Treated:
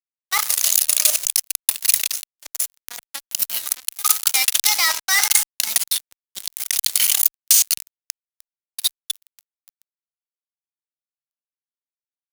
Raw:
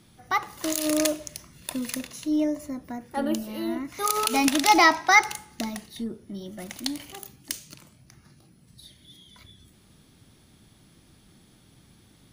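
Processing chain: level held to a coarse grid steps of 12 dB; band-stop 1.8 kHz, Q 22; reverse echo 387 ms -19.5 dB; reverse; compression 6:1, threshold -41 dBFS, peak gain reduction 19 dB; reverse; amplifier tone stack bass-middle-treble 10-0-10; fuzz box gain 49 dB, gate -54 dBFS; tilt EQ +3.5 dB/octave; warped record 78 rpm, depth 100 cents; trim -4 dB

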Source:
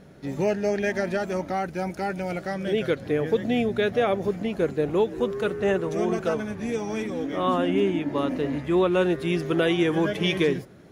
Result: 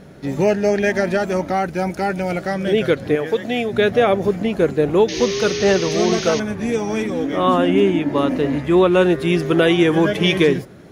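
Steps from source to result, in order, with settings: 3.15–3.73 s: bass shelf 320 Hz -12 dB; 5.08–6.40 s: painted sound noise 1.7–6.7 kHz -37 dBFS; trim +7.5 dB

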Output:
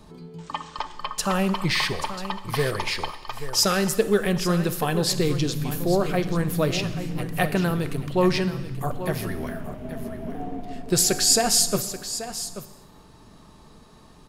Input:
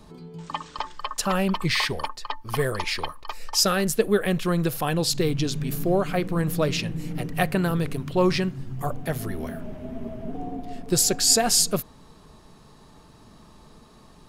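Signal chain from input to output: 9.14–11.24 s: dynamic bell 1.7 kHz, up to +4 dB, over -45 dBFS, Q 0.76; delay 833 ms -12 dB; gated-style reverb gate 420 ms falling, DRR 11.5 dB

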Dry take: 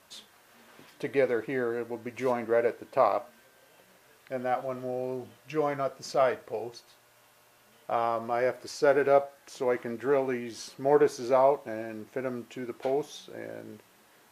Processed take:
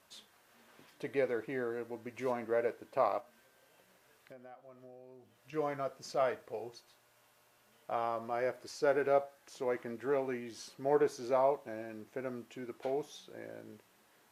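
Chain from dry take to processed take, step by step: 3.20–5.53 s: compression 6:1, threshold -45 dBFS, peak gain reduction 20 dB; trim -7 dB

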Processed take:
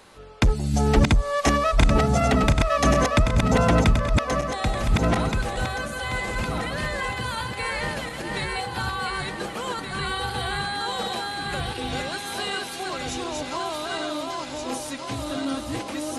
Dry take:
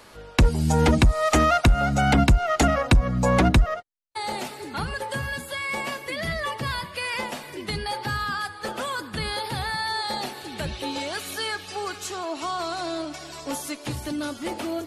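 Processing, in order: backward echo that repeats 676 ms, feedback 60%, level -2 dB; speed mistake 48 kHz file played as 44.1 kHz; trim -2 dB

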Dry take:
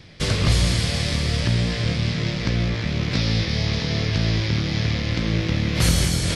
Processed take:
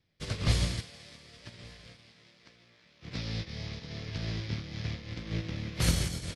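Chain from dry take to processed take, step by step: 0.81–3.02 s: high-pass 270 Hz -> 900 Hz 6 dB/octave; delay 1160 ms -13 dB; upward expansion 2.5:1, over -31 dBFS; trim -5.5 dB

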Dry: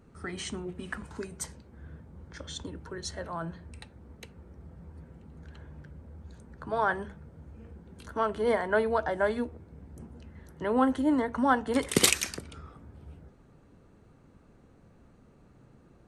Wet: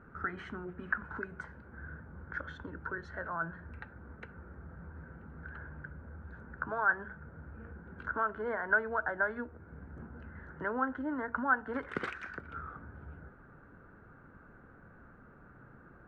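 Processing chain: compression 2:1, threshold -44 dBFS, peak gain reduction 15 dB; resonant low-pass 1.5 kHz, resonance Q 7.3

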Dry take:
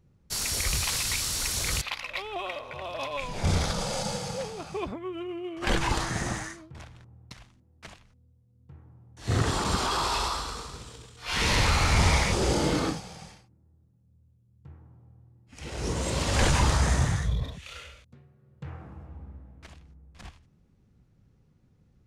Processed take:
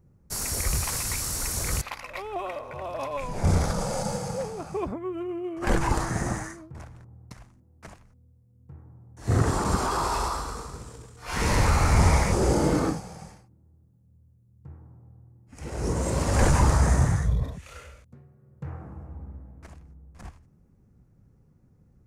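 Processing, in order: peaking EQ 3.4 kHz -14.5 dB 1.3 oct; trim +3.5 dB

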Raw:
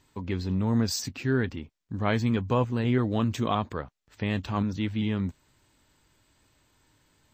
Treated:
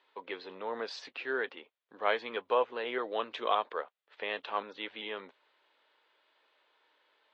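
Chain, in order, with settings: Chebyshev band-pass 460–3600 Hz, order 3

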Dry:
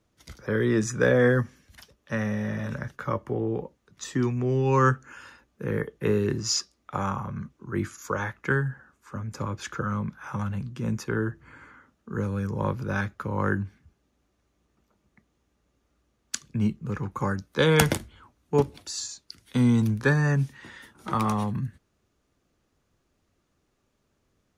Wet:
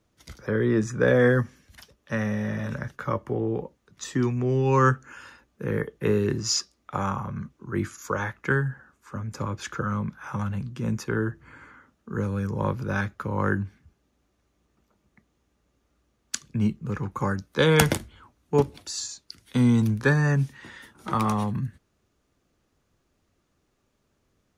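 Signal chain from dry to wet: 0.50–1.08 s: treble shelf 2.6 kHz -9 dB; trim +1 dB

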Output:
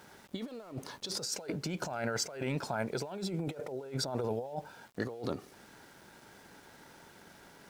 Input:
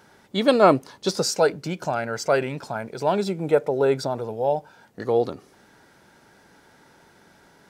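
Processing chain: compressor with a negative ratio -31 dBFS, ratio -1; small samples zeroed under -49 dBFS; trim -7.5 dB

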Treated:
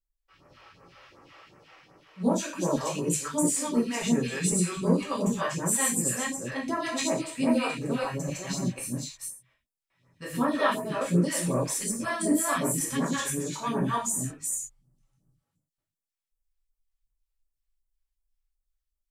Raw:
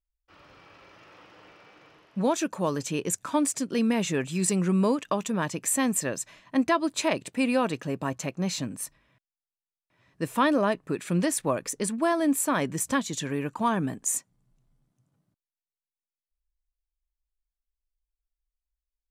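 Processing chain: chunks repeated in reverse 251 ms, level -0.5 dB; gated-style reverb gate 150 ms falling, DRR -5 dB; phase shifter stages 2, 2.7 Hz, lowest notch 160–3400 Hz; trim -7.5 dB

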